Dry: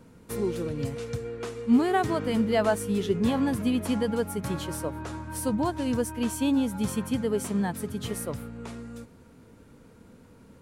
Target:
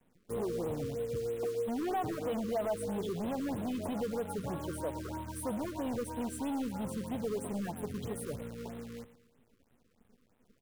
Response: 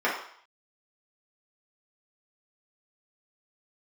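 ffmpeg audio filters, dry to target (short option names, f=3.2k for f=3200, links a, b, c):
-filter_complex "[0:a]asettb=1/sr,asplit=3[a][b][c];[a]atrim=end=1.454[d];[b]atrim=start=1.45:end=2.33,asetpts=PTS-STARTPTS,afade=t=in:d=0.004:c=qsin,afade=t=out:st=0.876:d=0.004:c=qsin,aecho=1:1:6.4:0.37,atrim=end_sample=38808[e];[c]atrim=start=2.326[f];[d][e]acrossfade=d=0.004:c1=hsin:c2=qsin[g];[g][f]acrossfade=d=0.004:c1=qsin:c2=hsin,afftdn=nr=18:nf=-37,alimiter=limit=-23dB:level=0:latency=1:release=111,asoftclip=type=hard:threshold=-30dB,equalizer=f=640:w=0.94:g=7.5,acrusher=bits=8:dc=4:mix=0:aa=0.000001,aecho=1:1:114|228|342|456:0.178|0.08|0.036|0.0162,afftfilt=real='re*(1-between(b*sr/1024,700*pow(5900/700,0.5+0.5*sin(2*PI*3.1*pts/sr))/1.41,700*pow(5900/700,0.5+0.5*sin(2*PI*3.1*pts/sr))*1.41))':imag='im*(1-between(b*sr/1024,700*pow(5900/700,0.5+0.5*sin(2*PI*3.1*pts/sr))/1.41,700*pow(5900/700,0.5+0.5*sin(2*PI*3.1*pts/sr))*1.41))':win_size=1024:overlap=0.75,volume=-5dB"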